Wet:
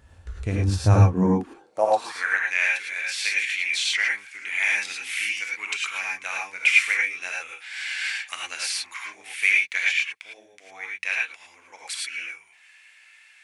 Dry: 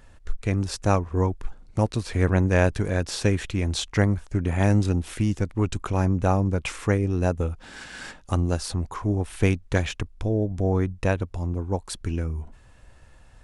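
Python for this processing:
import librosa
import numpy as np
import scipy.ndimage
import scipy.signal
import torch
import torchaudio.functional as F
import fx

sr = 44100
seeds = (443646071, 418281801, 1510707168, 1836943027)

y = fx.filter_sweep_highpass(x, sr, from_hz=63.0, to_hz=2200.0, start_s=0.65, end_s=2.44, q=5.8)
y = fx.rev_gated(y, sr, seeds[0], gate_ms=130, shape='rising', drr_db=-2.5)
y = fx.rider(y, sr, range_db=5, speed_s=2.0)
y = y * 10.0 ** (-2.5 / 20.0)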